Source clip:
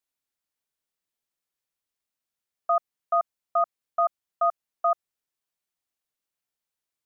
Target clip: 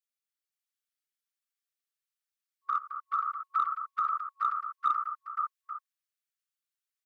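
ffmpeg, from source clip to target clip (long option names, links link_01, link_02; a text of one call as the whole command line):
ffmpeg -i in.wav -filter_complex "[0:a]agate=range=-7dB:threshold=-42dB:ratio=16:detection=peak,afftfilt=real='hypot(re,im)*cos(2*PI*random(0))':imag='hypot(re,im)*sin(2*PI*random(1))':win_size=512:overlap=0.75,asplit=2[link_01][link_02];[link_02]acompressor=threshold=-35dB:ratio=6,volume=-3dB[link_03];[link_01][link_03]amix=inputs=2:normalize=0,afftfilt=real='re*(1-between(b*sr/4096,400,1100))':imag='im*(1-between(b*sr/4096,400,1100))':win_size=4096:overlap=0.75,acrossover=split=780[link_04][link_05];[link_04]acrusher=bits=5:mix=0:aa=0.5[link_06];[link_05]aecho=1:1:90|216|533|851:0.158|0.355|0.631|0.251[link_07];[link_06][link_07]amix=inputs=2:normalize=0,volume=2dB" out.wav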